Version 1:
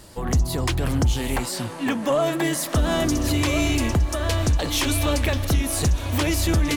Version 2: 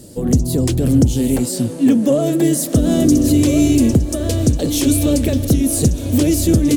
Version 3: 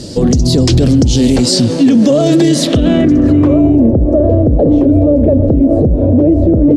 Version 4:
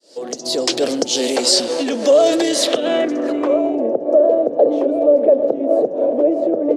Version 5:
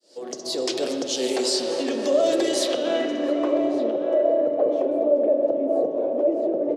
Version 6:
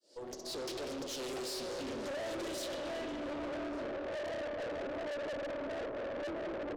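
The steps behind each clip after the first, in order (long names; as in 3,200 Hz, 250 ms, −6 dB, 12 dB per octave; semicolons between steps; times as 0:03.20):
graphic EQ with 10 bands 125 Hz +8 dB, 250 Hz +12 dB, 500 Hz +9 dB, 1,000 Hz −11 dB, 2,000 Hz −5 dB, 8,000 Hz +6 dB, 16,000 Hz +7 dB; level −1 dB
downward compressor, threshold −14 dBFS, peak gain reduction 7 dB; low-pass filter sweep 5,000 Hz → 600 Hz, 0:02.45–0:03.90; boost into a limiter +14 dB; level −1 dB
fade in at the beginning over 0.90 s; speech leveller within 4 dB 2 s; four-pole ladder high-pass 400 Hz, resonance 25%; level +5 dB
brickwall limiter −7 dBFS, peak gain reduction 5.5 dB; slap from a distant wall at 200 metres, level −8 dB; on a send at −4 dB: convolution reverb RT60 2.7 s, pre-delay 3 ms; on the sum: level −7.5 dB
tube saturation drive 31 dB, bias 0.6; highs frequency-modulated by the lows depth 0.16 ms; level −6.5 dB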